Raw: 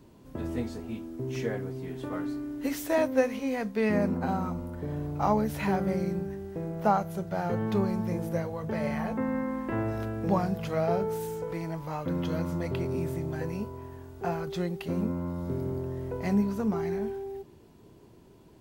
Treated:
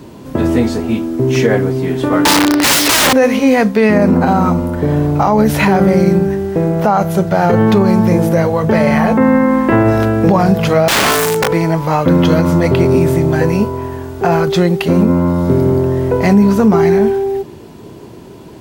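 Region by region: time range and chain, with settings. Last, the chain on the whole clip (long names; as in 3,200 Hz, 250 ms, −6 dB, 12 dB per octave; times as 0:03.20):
0:02.25–0:03.13: high shelf with overshoot 6,000 Hz −7.5 dB, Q 3 + mid-hump overdrive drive 17 dB, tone 7,400 Hz, clips at −14.5 dBFS + wrap-around overflow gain 26.5 dB
0:10.88–0:11.49: high-pass filter 77 Hz 24 dB per octave + wrap-around overflow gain 28.5 dB
whole clip: high-pass filter 100 Hz 6 dB per octave; high-shelf EQ 10,000 Hz −4 dB; boost into a limiter +22.5 dB; level −1 dB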